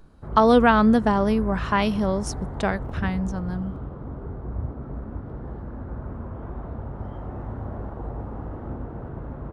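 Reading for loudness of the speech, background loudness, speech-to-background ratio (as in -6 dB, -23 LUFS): -21.5 LUFS, -34.5 LUFS, 13.0 dB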